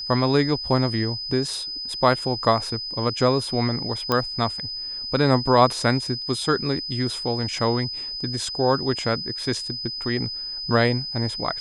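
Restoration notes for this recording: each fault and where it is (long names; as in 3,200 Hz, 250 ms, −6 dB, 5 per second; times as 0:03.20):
whistle 5,000 Hz −29 dBFS
0:04.12: click −8 dBFS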